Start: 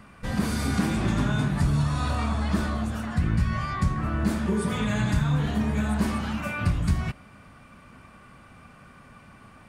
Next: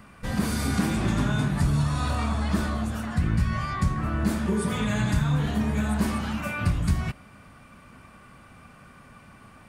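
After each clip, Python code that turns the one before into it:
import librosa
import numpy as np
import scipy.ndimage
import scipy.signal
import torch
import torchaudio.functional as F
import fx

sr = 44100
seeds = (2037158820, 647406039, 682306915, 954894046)

y = fx.high_shelf(x, sr, hz=9800.0, db=6.0)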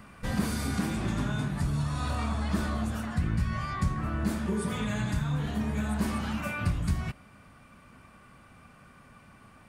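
y = fx.rider(x, sr, range_db=10, speed_s=0.5)
y = y * 10.0 ** (-4.5 / 20.0)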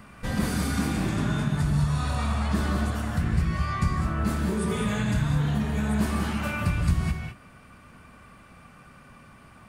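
y = fx.rev_gated(x, sr, seeds[0], gate_ms=230, shape='rising', drr_db=2.5)
y = y * 10.0 ** (2.0 / 20.0)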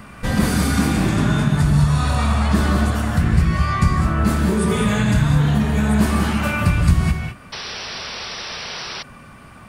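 y = fx.spec_paint(x, sr, seeds[1], shape='noise', start_s=7.52, length_s=1.51, low_hz=340.0, high_hz=5900.0, level_db=-39.0)
y = y * 10.0 ** (8.5 / 20.0)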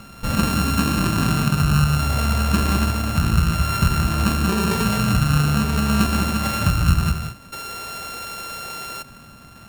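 y = np.r_[np.sort(x[:len(x) // 32 * 32].reshape(-1, 32), axis=1).ravel(), x[len(x) // 32 * 32:]]
y = y * 10.0 ** (-2.0 / 20.0)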